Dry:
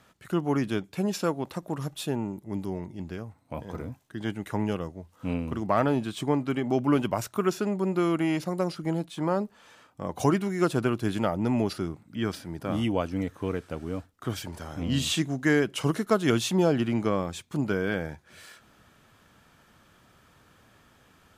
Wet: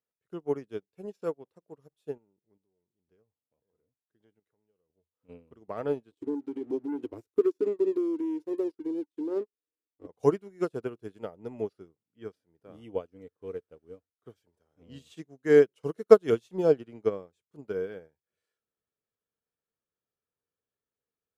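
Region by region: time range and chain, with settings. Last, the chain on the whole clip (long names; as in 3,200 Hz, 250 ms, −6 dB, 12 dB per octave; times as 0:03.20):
0:02.17–0:05.29: downward compressor 3 to 1, threshold −32 dBFS + square-wave tremolo 1.1 Hz, depth 60%, duty 45%
0:06.11–0:10.07: drawn EQ curve 100 Hz 0 dB, 180 Hz −25 dB, 290 Hz +11 dB, 600 Hz −14 dB, 6,800 Hz −9 dB + leveller curve on the samples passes 2 + downward compressor 16 to 1, threshold −19 dBFS
whole clip: parametric band 450 Hz +14 dB 0.53 octaves; expander for the loud parts 2.5 to 1, over −35 dBFS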